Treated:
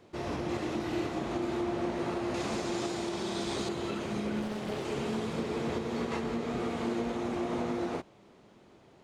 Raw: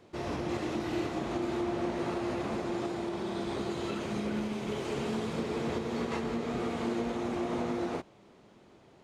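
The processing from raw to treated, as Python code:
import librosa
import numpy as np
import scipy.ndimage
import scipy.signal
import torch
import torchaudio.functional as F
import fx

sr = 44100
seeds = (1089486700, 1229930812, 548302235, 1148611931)

y = fx.peak_eq(x, sr, hz=6600.0, db=11.0, octaves=2.1, at=(2.34, 3.69))
y = fx.doppler_dist(y, sr, depth_ms=0.65, at=(4.42, 4.85))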